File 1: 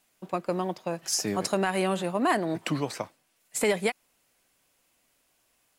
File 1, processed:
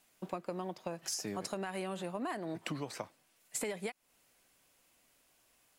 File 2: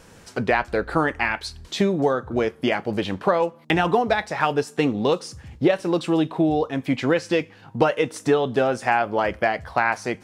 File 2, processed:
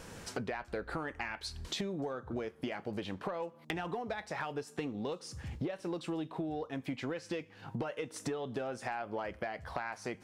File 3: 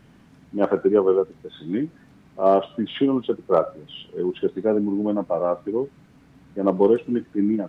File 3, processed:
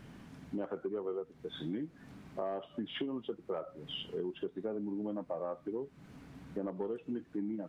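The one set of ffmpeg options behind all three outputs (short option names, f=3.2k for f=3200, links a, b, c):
-af "acontrast=44,alimiter=limit=-6.5dB:level=0:latency=1:release=283,acompressor=threshold=-30dB:ratio=6,volume=-6dB"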